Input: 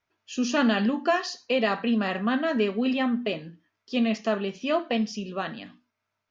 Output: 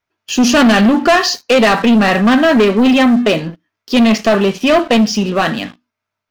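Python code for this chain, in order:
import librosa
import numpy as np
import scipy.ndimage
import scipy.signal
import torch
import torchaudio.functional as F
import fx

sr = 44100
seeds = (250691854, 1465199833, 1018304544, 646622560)

y = fx.leveller(x, sr, passes=3)
y = y * 10.0 ** (7.5 / 20.0)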